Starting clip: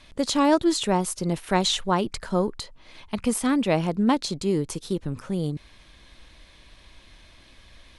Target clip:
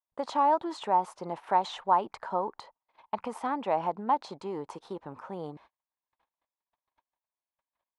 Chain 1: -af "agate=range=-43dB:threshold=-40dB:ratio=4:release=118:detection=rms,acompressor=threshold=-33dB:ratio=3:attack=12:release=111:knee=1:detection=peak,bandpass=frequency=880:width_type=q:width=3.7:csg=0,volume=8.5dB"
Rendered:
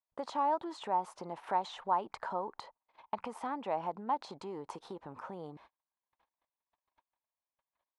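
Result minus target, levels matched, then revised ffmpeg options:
downward compressor: peak gain reduction +6.5 dB
-af "agate=range=-43dB:threshold=-40dB:ratio=4:release=118:detection=rms,acompressor=threshold=-23dB:ratio=3:attack=12:release=111:knee=1:detection=peak,bandpass=frequency=880:width_type=q:width=3.7:csg=0,volume=8.5dB"

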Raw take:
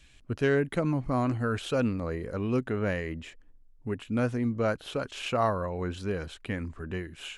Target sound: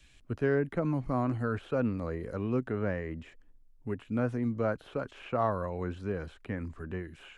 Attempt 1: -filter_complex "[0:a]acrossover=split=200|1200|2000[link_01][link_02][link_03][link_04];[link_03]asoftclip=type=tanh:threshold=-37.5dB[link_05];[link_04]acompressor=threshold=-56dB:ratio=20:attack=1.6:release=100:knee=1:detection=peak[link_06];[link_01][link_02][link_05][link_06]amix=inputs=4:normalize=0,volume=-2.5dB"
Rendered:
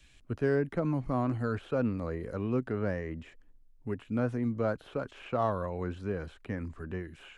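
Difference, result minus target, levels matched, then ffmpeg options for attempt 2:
soft clipping: distortion +12 dB
-filter_complex "[0:a]acrossover=split=200|1200|2000[link_01][link_02][link_03][link_04];[link_03]asoftclip=type=tanh:threshold=-28dB[link_05];[link_04]acompressor=threshold=-56dB:ratio=20:attack=1.6:release=100:knee=1:detection=peak[link_06];[link_01][link_02][link_05][link_06]amix=inputs=4:normalize=0,volume=-2.5dB"

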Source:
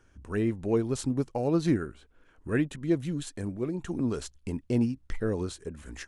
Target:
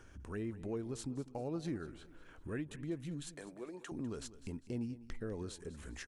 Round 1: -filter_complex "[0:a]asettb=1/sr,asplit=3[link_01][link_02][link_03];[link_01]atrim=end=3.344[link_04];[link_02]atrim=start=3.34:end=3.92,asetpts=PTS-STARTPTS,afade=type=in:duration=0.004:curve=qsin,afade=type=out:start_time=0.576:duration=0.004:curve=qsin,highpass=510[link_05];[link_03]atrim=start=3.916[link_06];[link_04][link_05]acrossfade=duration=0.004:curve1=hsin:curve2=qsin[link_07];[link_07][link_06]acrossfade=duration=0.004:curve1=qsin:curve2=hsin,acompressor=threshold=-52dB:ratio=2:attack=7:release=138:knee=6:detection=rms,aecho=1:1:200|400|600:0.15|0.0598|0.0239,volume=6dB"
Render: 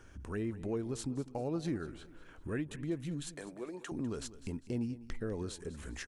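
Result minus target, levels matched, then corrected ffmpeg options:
downward compressor: peak gain reduction −4 dB
-filter_complex "[0:a]asettb=1/sr,asplit=3[link_01][link_02][link_03];[link_01]atrim=end=3.344[link_04];[link_02]atrim=start=3.34:end=3.92,asetpts=PTS-STARTPTS,afade=type=in:duration=0.004:curve=qsin,afade=type=out:start_time=0.576:duration=0.004:curve=qsin,highpass=510[link_05];[link_03]atrim=start=3.916[link_06];[link_04][link_05]acrossfade=duration=0.004:curve1=hsin:curve2=qsin[link_07];[link_07][link_06]acrossfade=duration=0.004:curve1=qsin:curve2=hsin,acompressor=threshold=-59.5dB:ratio=2:attack=7:release=138:knee=6:detection=rms,aecho=1:1:200|400|600:0.15|0.0598|0.0239,volume=6dB"

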